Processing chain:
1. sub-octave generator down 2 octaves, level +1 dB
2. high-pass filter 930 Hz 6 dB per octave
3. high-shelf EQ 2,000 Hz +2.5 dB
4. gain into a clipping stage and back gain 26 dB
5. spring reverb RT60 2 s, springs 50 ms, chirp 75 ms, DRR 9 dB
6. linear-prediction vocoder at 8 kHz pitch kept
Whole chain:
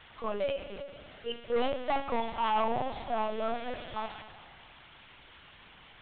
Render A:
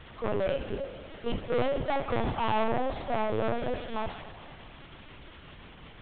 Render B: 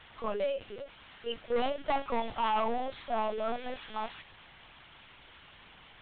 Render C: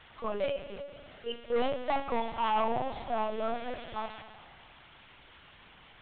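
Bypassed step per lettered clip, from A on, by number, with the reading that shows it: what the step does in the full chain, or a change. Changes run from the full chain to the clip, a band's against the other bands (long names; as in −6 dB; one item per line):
2, 125 Hz band +10.0 dB
5, 125 Hz band −4.0 dB
3, change in momentary loudness spread −7 LU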